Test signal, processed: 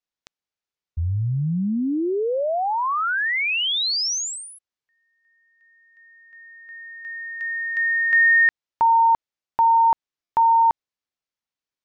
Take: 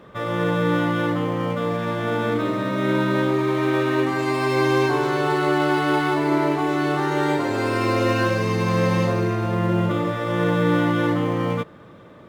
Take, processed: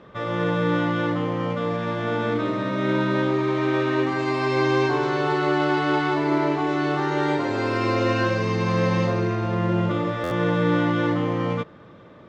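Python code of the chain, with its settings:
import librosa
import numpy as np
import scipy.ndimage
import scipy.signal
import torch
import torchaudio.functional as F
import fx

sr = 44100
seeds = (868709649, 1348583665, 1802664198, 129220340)

y = scipy.signal.sosfilt(scipy.signal.butter(4, 6400.0, 'lowpass', fs=sr, output='sos'), x)
y = fx.buffer_glitch(y, sr, at_s=(10.23,), block=512, repeats=6)
y = y * 10.0 ** (-1.5 / 20.0)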